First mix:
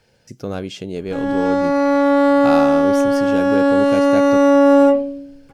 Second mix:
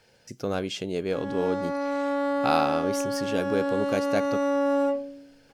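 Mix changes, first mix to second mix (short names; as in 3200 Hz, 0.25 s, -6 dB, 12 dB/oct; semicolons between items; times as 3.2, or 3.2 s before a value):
background -11.0 dB; master: add low shelf 270 Hz -7 dB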